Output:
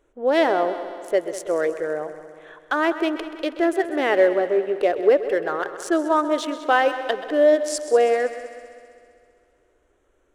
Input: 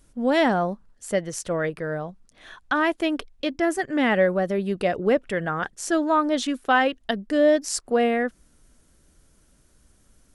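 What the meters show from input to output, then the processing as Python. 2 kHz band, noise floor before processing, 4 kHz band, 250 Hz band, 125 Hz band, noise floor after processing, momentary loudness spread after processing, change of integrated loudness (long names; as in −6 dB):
0.0 dB, −60 dBFS, −1.0 dB, −1.5 dB, below −15 dB, −64 dBFS, 10 LU, +2.0 dB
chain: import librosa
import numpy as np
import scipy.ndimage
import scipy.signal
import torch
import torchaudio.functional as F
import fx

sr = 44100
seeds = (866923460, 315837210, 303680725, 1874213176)

y = fx.wiener(x, sr, points=9)
y = fx.low_shelf_res(y, sr, hz=280.0, db=-11.0, q=3.0)
y = fx.echo_heads(y, sr, ms=65, heads='second and third', feedback_pct=60, wet_db=-14.5)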